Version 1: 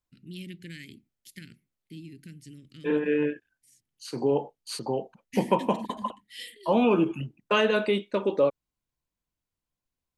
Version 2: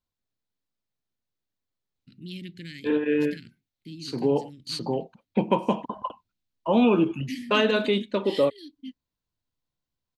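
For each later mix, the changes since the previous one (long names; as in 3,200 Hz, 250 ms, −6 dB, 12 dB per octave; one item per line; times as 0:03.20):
first voice: entry +1.95 s
master: add graphic EQ with 15 bands 100 Hz +5 dB, 250 Hz +4 dB, 4,000 Hz +7 dB, 10,000 Hz −7 dB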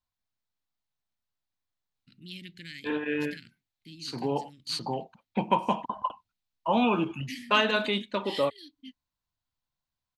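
second voice: add low-shelf EQ 160 Hz +6 dB
master: add low shelf with overshoot 610 Hz −7 dB, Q 1.5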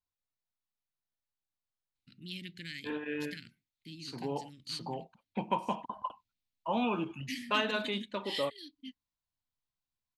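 second voice −7.0 dB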